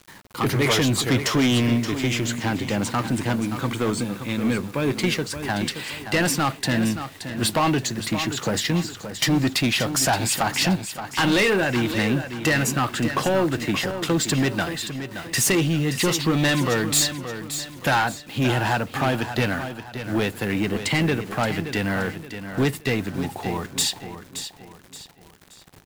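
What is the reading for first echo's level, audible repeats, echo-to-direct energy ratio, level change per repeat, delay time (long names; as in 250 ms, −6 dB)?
−10.0 dB, 3, −9.5 dB, −8.5 dB, 574 ms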